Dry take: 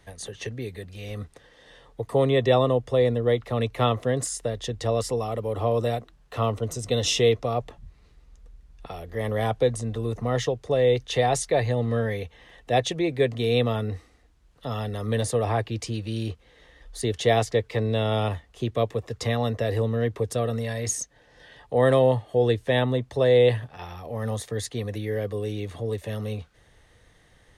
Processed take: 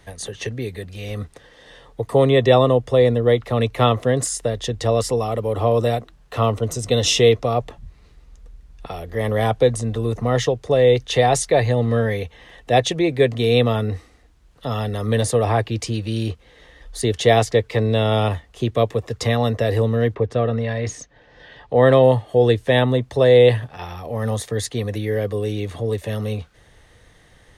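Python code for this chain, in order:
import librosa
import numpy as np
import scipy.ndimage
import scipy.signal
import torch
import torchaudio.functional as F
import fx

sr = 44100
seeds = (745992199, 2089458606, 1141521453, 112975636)

y = fx.lowpass(x, sr, hz=fx.line((20.14, 2400.0), (22.02, 5500.0)), slope=12, at=(20.14, 22.02), fade=0.02)
y = F.gain(torch.from_numpy(y), 6.0).numpy()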